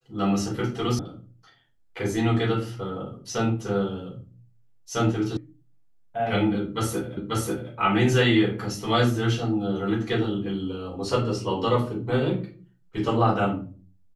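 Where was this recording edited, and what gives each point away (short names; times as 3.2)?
0.99 sound cut off
5.37 sound cut off
7.17 repeat of the last 0.54 s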